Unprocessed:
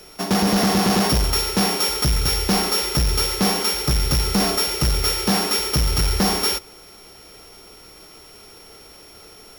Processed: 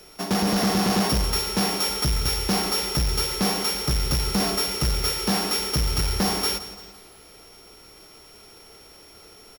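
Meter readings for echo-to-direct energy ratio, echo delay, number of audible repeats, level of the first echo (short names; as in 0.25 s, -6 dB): -13.0 dB, 0.17 s, 4, -14.5 dB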